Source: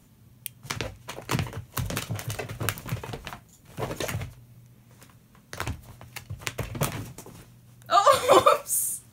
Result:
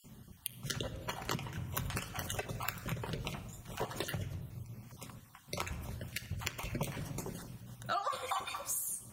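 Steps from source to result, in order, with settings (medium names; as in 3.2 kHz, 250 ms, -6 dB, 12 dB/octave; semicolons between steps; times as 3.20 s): random holes in the spectrogram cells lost 32%; simulated room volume 3000 m³, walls furnished, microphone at 1.1 m; compression 6:1, threshold -38 dBFS, peak gain reduction 22 dB; trim +3 dB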